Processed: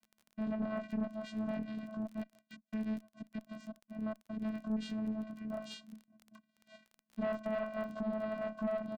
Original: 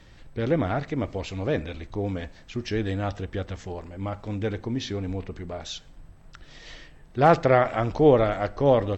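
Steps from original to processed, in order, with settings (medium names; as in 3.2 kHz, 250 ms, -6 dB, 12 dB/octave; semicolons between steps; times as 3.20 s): echo from a far wall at 200 m, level -16 dB; chorus 2.1 Hz, delay 16.5 ms, depth 7.3 ms; compression 3:1, threshold -30 dBFS, peak gain reduction 11.5 dB; 2.03–4.38 s: trance gate "xxx..xxx..x.x." 182 bpm -24 dB; gate -44 dBFS, range -24 dB; bass shelf 230 Hz -8 dB; vocoder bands 8, square 217 Hz; crackle 22 per s -46 dBFS; valve stage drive 31 dB, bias 0.35; trim +1.5 dB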